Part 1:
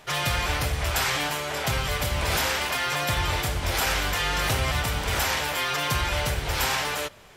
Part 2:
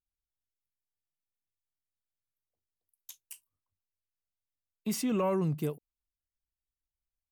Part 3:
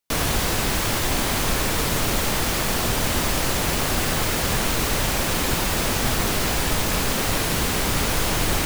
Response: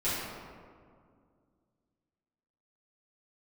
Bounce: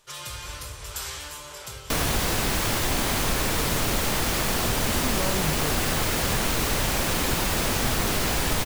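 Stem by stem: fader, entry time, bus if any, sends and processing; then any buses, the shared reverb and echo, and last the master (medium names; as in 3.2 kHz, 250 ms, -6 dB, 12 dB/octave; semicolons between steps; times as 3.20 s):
1.61 s -9.5 dB -> 2.17 s -21.5 dB, 0.00 s, send -13 dB, graphic EQ 125/250/2000/8000 Hz -6/-10/-8/+6 dB; peaking EQ 720 Hz -14 dB 0.38 oct
-0.5 dB, 0.00 s, no send, none
0.0 dB, 1.80 s, no send, none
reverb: on, RT60 2.1 s, pre-delay 4 ms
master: compression 1.5:1, threshold -24 dBFS, peak gain reduction 3 dB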